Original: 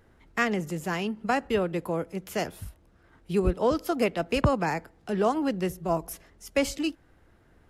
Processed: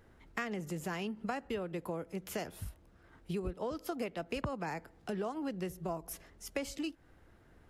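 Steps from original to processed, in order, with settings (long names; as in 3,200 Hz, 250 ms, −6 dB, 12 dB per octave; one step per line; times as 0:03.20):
downward compressor 5 to 1, threshold −33 dBFS, peak gain reduction 14.5 dB
level −2 dB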